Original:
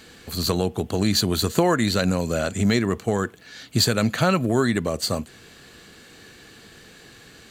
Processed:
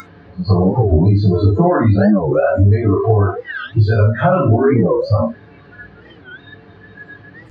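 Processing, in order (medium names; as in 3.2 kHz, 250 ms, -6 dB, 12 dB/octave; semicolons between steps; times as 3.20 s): jump at every zero crossing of -21 dBFS; tape spacing loss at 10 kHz 37 dB; comb 7 ms, depth 37%; feedback echo behind a high-pass 75 ms, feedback 68%, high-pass 4 kHz, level -8 dB; reverberation RT60 0.45 s, pre-delay 3 ms, DRR -16 dB; upward compressor, threshold -7 dBFS; spectral noise reduction 25 dB; 2.31–4.51 s: peaking EQ 190 Hz -11.5 dB 0.63 oct; compression 6:1, threshold -2 dBFS, peak gain reduction 9 dB; warped record 45 rpm, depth 250 cents; trim -7 dB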